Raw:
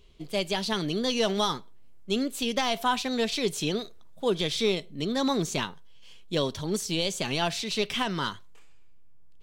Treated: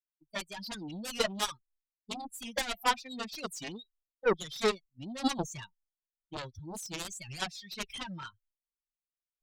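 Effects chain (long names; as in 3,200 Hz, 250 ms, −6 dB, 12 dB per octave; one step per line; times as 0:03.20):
spectral dynamics exaggerated over time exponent 3
downward expander −52 dBFS
harmonic generator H 2 −10 dB, 5 −21 dB, 7 −9 dB, 8 −33 dB, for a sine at −17.5 dBFS
wow of a warped record 45 rpm, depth 160 cents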